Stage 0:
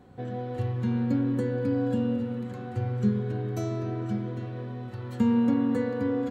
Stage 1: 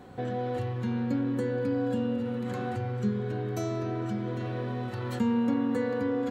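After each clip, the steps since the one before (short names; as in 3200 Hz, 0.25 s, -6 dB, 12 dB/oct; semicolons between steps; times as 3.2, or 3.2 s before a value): in parallel at -3 dB: negative-ratio compressor -36 dBFS, ratio -1; on the sum: low shelf 280 Hz -7 dB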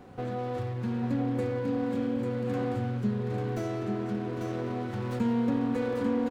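echo 0.845 s -5 dB; running maximum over 9 samples; gain -1 dB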